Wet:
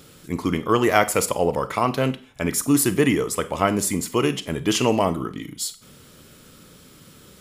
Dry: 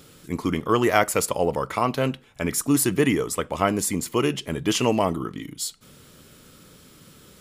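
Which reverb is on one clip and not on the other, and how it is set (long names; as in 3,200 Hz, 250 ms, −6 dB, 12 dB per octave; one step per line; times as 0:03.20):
four-comb reverb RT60 0.38 s, combs from 31 ms, DRR 13.5 dB
level +1.5 dB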